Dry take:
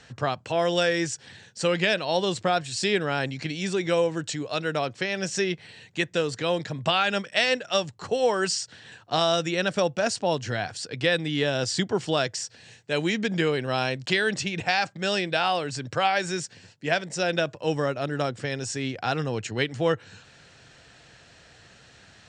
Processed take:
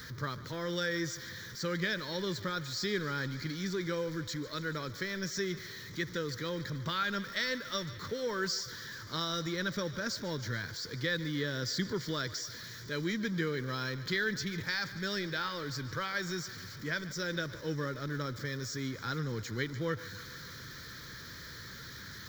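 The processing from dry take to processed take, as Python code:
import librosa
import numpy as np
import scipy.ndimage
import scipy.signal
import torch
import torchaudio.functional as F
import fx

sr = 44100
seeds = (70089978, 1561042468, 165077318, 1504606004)

y = x + 0.5 * 10.0 ** (-33.0 / 20.0) * np.sign(x)
y = fx.fixed_phaser(y, sr, hz=2700.0, stages=6)
y = fx.echo_thinned(y, sr, ms=146, feedback_pct=80, hz=410.0, wet_db=-16)
y = y * 10.0 ** (-7.0 / 20.0)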